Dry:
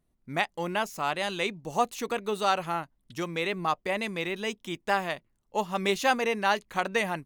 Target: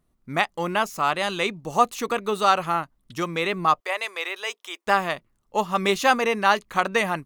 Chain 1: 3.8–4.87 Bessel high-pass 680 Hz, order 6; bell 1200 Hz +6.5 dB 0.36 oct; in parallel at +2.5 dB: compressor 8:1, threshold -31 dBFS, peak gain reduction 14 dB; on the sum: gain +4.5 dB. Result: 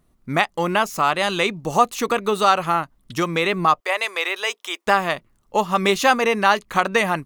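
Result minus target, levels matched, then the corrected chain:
compressor: peak gain reduction +14 dB
3.8–4.87 Bessel high-pass 680 Hz, order 6; bell 1200 Hz +6.5 dB 0.36 oct; gain +4.5 dB

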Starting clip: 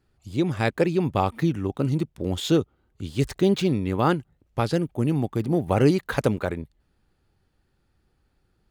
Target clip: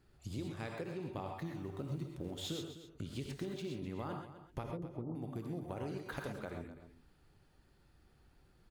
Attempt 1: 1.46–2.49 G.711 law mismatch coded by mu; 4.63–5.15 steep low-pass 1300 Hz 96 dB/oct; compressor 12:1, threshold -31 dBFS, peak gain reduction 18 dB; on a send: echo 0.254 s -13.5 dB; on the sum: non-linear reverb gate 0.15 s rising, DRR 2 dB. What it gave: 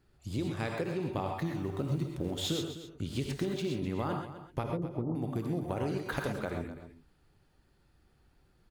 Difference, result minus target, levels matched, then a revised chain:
compressor: peak gain reduction -8 dB
1.46–2.49 G.711 law mismatch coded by mu; 4.63–5.15 steep low-pass 1300 Hz 96 dB/oct; compressor 12:1, threshold -40 dBFS, peak gain reduction 26.5 dB; on a send: echo 0.254 s -13.5 dB; on the sum: non-linear reverb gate 0.15 s rising, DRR 2 dB

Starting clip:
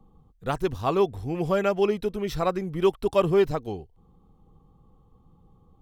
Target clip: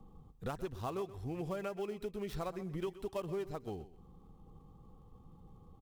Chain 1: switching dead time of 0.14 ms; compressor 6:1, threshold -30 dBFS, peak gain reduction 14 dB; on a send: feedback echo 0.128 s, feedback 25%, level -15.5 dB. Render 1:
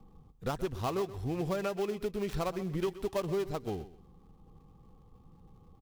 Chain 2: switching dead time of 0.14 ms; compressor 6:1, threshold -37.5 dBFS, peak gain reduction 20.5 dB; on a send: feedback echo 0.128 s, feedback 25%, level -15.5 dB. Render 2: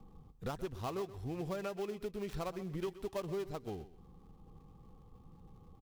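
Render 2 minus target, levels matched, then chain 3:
switching dead time: distortion +8 dB
switching dead time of 0.059 ms; compressor 6:1, threshold -37.5 dBFS, peak gain reduction 20.5 dB; on a send: feedback echo 0.128 s, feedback 25%, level -15.5 dB

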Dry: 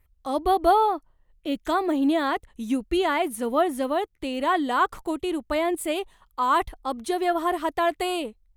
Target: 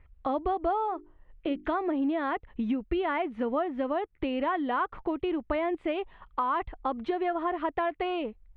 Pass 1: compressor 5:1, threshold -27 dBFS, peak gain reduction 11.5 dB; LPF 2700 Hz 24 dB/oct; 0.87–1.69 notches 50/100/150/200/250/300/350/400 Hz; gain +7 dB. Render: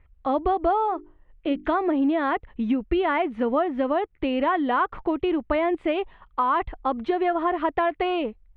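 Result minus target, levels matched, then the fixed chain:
compressor: peak gain reduction -6 dB
compressor 5:1, threshold -34.5 dBFS, peak gain reduction 17.5 dB; LPF 2700 Hz 24 dB/oct; 0.87–1.69 notches 50/100/150/200/250/300/350/400 Hz; gain +7 dB

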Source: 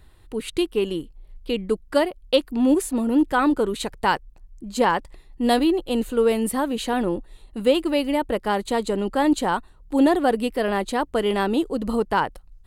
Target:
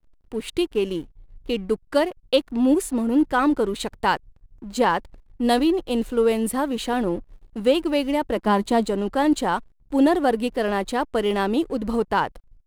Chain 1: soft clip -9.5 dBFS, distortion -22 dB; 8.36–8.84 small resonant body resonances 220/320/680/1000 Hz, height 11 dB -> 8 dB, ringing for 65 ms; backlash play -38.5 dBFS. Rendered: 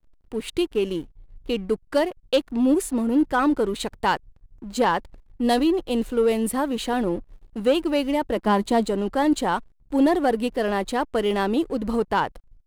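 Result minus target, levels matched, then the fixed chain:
soft clip: distortion +17 dB
soft clip 0 dBFS, distortion -39 dB; 8.36–8.84 small resonant body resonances 220/320/680/1000 Hz, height 11 dB -> 8 dB, ringing for 65 ms; backlash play -38.5 dBFS

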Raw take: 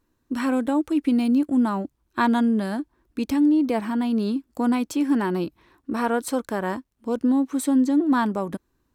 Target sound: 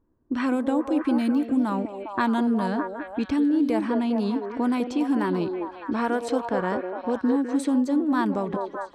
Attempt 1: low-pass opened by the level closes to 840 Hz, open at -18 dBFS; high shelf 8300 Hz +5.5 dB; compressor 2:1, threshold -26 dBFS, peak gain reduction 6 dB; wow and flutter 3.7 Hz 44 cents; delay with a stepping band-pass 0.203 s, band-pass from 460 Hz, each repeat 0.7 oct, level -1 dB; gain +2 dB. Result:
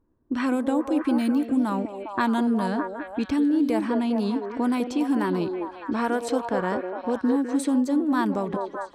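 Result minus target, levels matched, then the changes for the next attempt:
8000 Hz band +4.0 dB
change: high shelf 8300 Hz -3 dB

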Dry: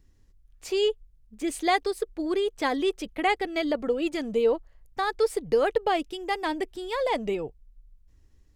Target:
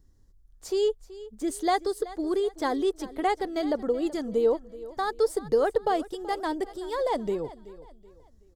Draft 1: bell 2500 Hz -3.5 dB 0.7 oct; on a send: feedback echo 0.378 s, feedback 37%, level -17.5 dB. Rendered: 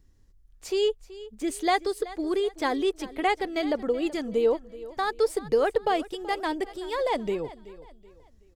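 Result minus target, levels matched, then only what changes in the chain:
2000 Hz band +4.5 dB
change: bell 2500 Hz -15 dB 0.7 oct

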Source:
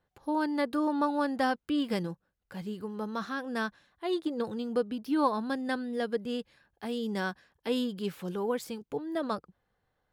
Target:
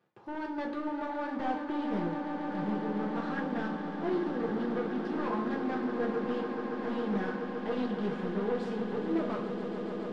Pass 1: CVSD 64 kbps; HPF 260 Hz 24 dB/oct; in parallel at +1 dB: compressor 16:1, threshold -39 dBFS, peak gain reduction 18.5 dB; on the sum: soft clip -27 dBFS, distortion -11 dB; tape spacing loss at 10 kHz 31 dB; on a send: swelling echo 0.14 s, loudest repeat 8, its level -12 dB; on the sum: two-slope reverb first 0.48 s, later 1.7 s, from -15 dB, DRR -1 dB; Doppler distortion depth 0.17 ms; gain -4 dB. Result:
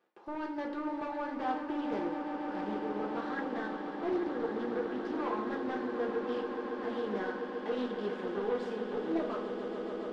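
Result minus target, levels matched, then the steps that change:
125 Hz band -8.5 dB; compressor: peak gain reduction +7.5 dB
change: HPF 130 Hz 24 dB/oct; change: compressor 16:1, threshold -30.5 dBFS, peak gain reduction 11 dB

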